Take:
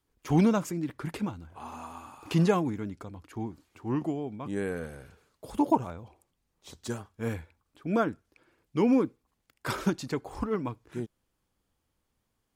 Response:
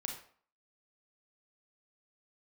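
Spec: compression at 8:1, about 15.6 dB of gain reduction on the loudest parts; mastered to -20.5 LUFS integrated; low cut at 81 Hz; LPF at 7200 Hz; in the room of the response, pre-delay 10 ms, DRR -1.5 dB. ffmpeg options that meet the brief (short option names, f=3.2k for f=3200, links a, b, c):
-filter_complex "[0:a]highpass=81,lowpass=7.2k,acompressor=threshold=-35dB:ratio=8,asplit=2[a][b];[1:a]atrim=start_sample=2205,adelay=10[c];[b][c]afir=irnorm=-1:irlink=0,volume=1.5dB[d];[a][d]amix=inputs=2:normalize=0,volume=17.5dB"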